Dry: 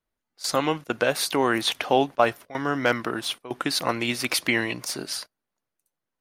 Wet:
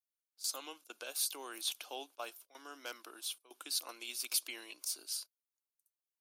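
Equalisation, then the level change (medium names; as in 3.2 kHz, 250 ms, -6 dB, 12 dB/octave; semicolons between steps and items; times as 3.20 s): ladder high-pass 260 Hz, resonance 45%; differentiator; peaking EQ 1.9 kHz -15 dB 0.3 oct; +2.5 dB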